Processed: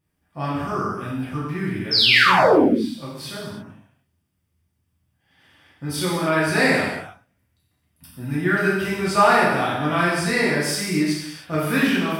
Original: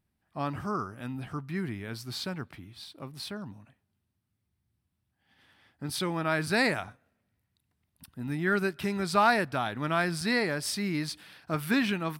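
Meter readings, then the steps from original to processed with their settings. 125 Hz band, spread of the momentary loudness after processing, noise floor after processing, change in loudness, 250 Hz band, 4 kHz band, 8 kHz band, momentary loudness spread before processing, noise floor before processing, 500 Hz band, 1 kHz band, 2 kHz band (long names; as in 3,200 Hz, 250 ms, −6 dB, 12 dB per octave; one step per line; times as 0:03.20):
+8.0 dB, 18 LU, −71 dBFS, +10.5 dB, +9.5 dB, +14.0 dB, +8.5 dB, 17 LU, −80 dBFS, +11.0 dB, +10.0 dB, +10.5 dB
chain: notch filter 4,100 Hz, Q 8.2
sound drawn into the spectrogram fall, 0:01.91–0:02.67, 200–5,500 Hz −23 dBFS
reverb whose tail is shaped and stops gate 350 ms falling, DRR −8 dB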